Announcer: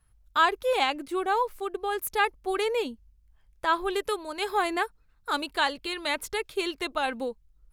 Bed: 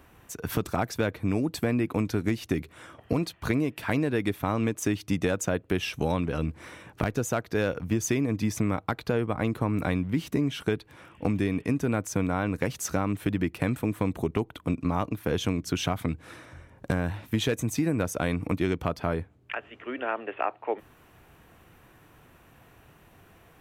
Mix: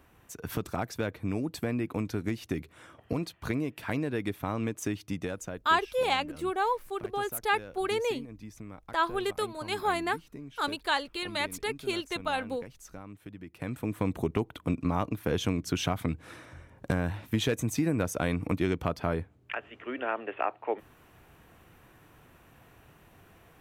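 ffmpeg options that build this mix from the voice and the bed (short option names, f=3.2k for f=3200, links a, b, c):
-filter_complex "[0:a]adelay=5300,volume=-2.5dB[a];[1:a]volume=11.5dB,afade=t=out:st=4.84:d=0.99:silence=0.223872,afade=t=in:st=13.46:d=0.64:silence=0.149624[b];[a][b]amix=inputs=2:normalize=0"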